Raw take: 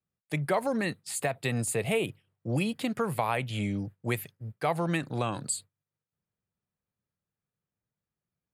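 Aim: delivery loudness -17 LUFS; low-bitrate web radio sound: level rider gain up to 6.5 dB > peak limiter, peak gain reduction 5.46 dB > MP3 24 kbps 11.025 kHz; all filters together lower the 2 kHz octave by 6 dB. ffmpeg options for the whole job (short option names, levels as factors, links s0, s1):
-af "equalizer=f=2000:t=o:g=-7.5,dynaudnorm=m=2.11,alimiter=limit=0.0891:level=0:latency=1,volume=7.08" -ar 11025 -c:a libmp3lame -b:a 24k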